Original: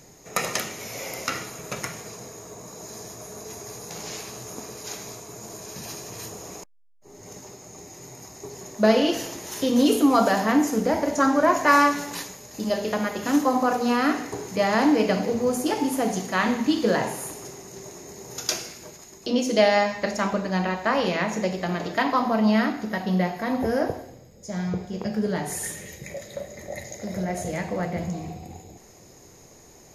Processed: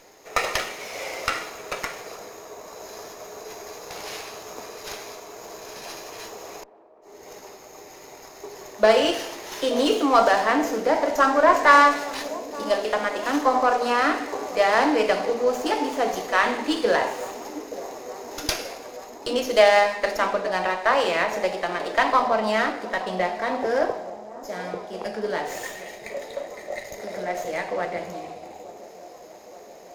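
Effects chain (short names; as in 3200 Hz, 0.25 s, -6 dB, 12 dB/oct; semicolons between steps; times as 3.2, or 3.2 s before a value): three-band isolator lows -24 dB, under 350 Hz, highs -21 dB, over 6400 Hz; band-limited delay 0.875 s, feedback 74%, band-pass 430 Hz, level -15 dB; running maximum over 3 samples; gain +4 dB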